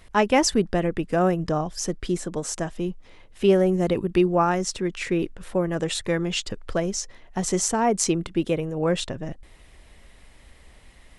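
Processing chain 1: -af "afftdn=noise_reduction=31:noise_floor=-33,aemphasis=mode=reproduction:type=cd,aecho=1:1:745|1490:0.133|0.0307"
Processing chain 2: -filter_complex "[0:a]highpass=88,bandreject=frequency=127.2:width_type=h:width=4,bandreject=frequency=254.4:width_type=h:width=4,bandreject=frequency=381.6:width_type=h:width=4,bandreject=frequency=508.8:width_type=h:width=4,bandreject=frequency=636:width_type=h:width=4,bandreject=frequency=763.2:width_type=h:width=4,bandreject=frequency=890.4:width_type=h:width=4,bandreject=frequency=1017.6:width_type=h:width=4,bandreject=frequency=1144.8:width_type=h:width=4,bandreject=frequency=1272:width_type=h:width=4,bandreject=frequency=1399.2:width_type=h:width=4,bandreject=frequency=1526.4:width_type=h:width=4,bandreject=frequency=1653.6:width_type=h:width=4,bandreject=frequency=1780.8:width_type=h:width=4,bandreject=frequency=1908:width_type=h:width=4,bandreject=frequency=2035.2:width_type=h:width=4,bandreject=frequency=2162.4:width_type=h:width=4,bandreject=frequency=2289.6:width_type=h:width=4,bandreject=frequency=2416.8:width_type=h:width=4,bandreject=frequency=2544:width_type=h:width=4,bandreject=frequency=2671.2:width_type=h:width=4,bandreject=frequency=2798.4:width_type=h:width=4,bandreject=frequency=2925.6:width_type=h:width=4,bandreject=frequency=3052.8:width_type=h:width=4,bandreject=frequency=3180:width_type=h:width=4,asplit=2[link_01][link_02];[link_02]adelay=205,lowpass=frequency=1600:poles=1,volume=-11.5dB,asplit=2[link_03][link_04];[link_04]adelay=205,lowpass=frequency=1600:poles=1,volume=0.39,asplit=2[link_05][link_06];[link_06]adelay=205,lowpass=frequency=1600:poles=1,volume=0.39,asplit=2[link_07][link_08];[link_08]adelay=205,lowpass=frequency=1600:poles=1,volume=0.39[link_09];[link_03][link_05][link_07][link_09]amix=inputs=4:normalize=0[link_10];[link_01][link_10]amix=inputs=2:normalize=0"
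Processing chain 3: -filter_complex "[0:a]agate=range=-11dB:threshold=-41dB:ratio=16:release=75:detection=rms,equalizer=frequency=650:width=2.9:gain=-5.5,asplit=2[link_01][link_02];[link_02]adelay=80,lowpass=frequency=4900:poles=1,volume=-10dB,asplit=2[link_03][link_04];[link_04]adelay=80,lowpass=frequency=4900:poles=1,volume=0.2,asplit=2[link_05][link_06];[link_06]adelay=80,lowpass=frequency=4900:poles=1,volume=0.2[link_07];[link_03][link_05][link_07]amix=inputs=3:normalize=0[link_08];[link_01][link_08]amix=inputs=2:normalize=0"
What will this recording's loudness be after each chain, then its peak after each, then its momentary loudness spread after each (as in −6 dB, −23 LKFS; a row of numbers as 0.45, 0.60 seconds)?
−24.5, −24.5, −24.5 LKFS; −8.0, −5.0, −4.5 dBFS; 12, 10, 10 LU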